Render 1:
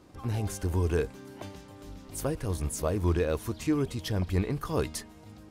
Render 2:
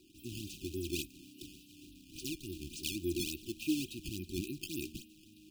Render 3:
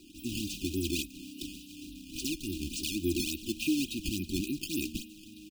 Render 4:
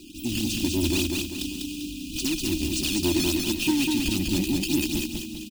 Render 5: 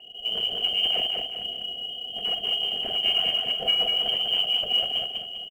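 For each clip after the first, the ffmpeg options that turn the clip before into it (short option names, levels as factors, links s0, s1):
-filter_complex "[0:a]acrossover=split=350 4500:gain=0.1 1 0.251[s0][s1][s2];[s0][s1][s2]amix=inputs=3:normalize=0,acrusher=samples=13:mix=1:aa=0.000001:lfo=1:lforange=20.8:lforate=3.5,afftfilt=real='re*(1-between(b*sr/4096,380,2400))':imag='im*(1-between(b*sr/4096,380,2400))':win_size=4096:overlap=0.75,volume=1.26"
-af "equalizer=f=12000:w=3.7:g=-3,aecho=1:1:4:0.5,alimiter=level_in=1.58:limit=0.0631:level=0:latency=1:release=202,volume=0.631,volume=2.51"
-filter_complex "[0:a]asoftclip=type=tanh:threshold=0.0422,asplit=2[s0][s1];[s1]aecho=0:1:197|394|591|788|985:0.708|0.283|0.113|0.0453|0.0181[s2];[s0][s2]amix=inputs=2:normalize=0,volume=2.82"
-filter_complex "[0:a]asplit=2[s0][s1];[s1]adelay=45,volume=0.266[s2];[s0][s2]amix=inputs=2:normalize=0,lowpass=f=2700:t=q:w=0.5098,lowpass=f=2700:t=q:w=0.6013,lowpass=f=2700:t=q:w=0.9,lowpass=f=2700:t=q:w=2.563,afreqshift=-3200,acrusher=bits=8:mode=log:mix=0:aa=0.000001"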